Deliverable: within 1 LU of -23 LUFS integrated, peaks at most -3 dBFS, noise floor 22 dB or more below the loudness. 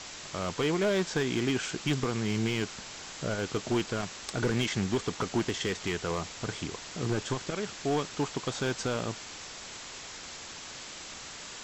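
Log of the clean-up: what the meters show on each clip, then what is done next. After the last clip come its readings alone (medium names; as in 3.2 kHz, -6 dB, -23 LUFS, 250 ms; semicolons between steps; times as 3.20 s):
clipped samples 1.0%; clipping level -21.5 dBFS; noise floor -44 dBFS; noise floor target -55 dBFS; loudness -32.5 LUFS; peak level -21.5 dBFS; loudness target -23.0 LUFS
-> clip repair -21.5 dBFS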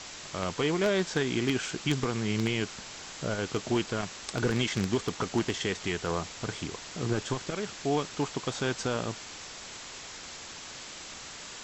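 clipped samples 0.0%; noise floor -44 dBFS; noise floor target -54 dBFS
-> noise print and reduce 10 dB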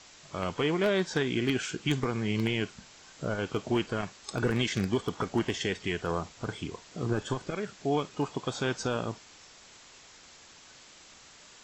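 noise floor -54 dBFS; loudness -31.5 LUFS; peak level -13.0 dBFS; loudness target -23.0 LUFS
-> trim +8.5 dB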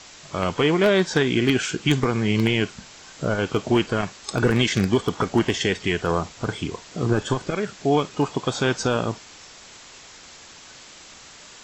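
loudness -23.0 LUFS; peak level -4.5 dBFS; noise floor -46 dBFS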